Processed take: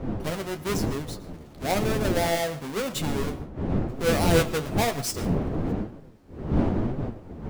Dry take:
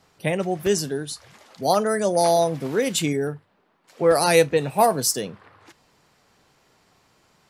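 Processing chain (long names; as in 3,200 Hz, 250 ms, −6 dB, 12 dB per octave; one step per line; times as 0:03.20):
each half-wave held at its own peak
wind on the microphone 280 Hz −18 dBFS
flanger 1 Hz, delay 6.9 ms, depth 7.4 ms, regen +51%
on a send: convolution reverb RT60 0.30 s, pre-delay 75 ms, DRR 17 dB
on the sum: level −7 dB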